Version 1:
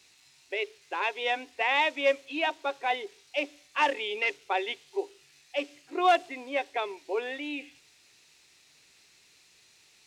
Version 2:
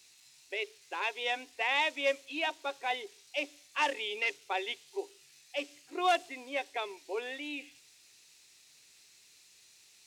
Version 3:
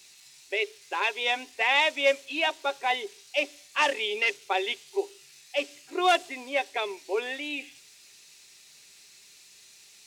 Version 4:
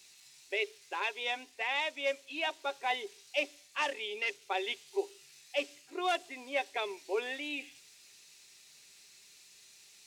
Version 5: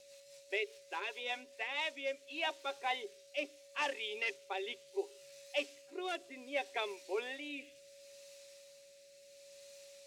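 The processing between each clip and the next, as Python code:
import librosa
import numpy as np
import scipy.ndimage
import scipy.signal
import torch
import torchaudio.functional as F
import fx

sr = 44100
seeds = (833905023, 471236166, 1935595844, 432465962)

y1 = fx.high_shelf(x, sr, hz=4100.0, db=11.0)
y1 = F.gain(torch.from_numpy(y1), -6.0).numpy()
y2 = y1 + 0.31 * np.pad(y1, (int(5.0 * sr / 1000.0), 0))[:len(y1)]
y2 = F.gain(torch.from_numpy(y2), 6.5).numpy()
y3 = fx.rider(y2, sr, range_db=3, speed_s=0.5)
y3 = F.gain(torch.from_numpy(y3), -7.5).numpy()
y4 = fx.wow_flutter(y3, sr, seeds[0], rate_hz=2.1, depth_cents=26.0)
y4 = y4 + 10.0 ** (-53.0 / 20.0) * np.sin(2.0 * np.pi * 560.0 * np.arange(len(y4)) / sr)
y4 = fx.rotary_switch(y4, sr, hz=5.0, then_hz=0.7, switch_at_s=1.34)
y4 = F.gain(torch.from_numpy(y4), -1.5).numpy()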